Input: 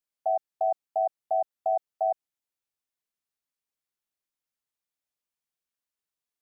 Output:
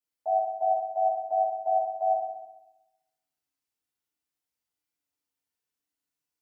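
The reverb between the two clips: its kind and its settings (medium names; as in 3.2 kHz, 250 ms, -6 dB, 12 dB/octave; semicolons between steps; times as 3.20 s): FDN reverb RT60 0.97 s, low-frequency decay 1.4×, high-frequency decay 0.95×, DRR -9 dB; trim -8 dB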